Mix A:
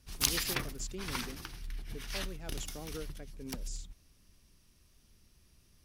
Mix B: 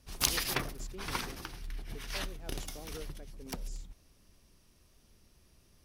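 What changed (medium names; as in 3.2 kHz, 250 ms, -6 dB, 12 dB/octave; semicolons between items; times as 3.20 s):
speech -8.0 dB; master: add peaking EQ 590 Hz +6.5 dB 2 oct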